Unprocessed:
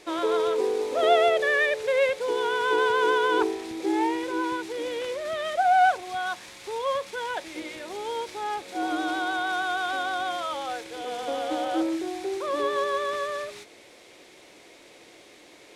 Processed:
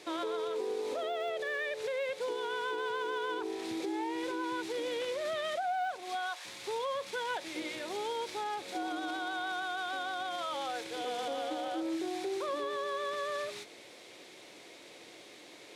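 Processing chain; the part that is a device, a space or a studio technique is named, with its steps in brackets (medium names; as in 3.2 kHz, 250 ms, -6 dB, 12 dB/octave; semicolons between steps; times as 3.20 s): broadcast voice chain (high-pass 93 Hz 24 dB/octave; de-esser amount 85%; compression 5:1, threshold -29 dBFS, peak gain reduction 12 dB; peaking EQ 3.9 kHz +3 dB 0.71 oct; peak limiter -25.5 dBFS, peak gain reduction 5 dB); 5.96–6.44 s: high-pass 140 Hz -> 590 Hz 24 dB/octave; trim -2 dB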